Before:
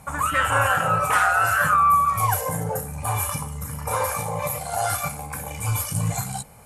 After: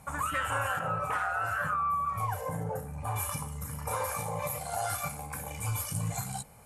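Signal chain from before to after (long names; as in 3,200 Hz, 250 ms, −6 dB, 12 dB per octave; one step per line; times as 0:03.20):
0:00.79–0:03.16: high-shelf EQ 2,900 Hz −11.5 dB
downward compressor 3 to 1, threshold −22 dBFS, peak gain reduction 5 dB
level −6.5 dB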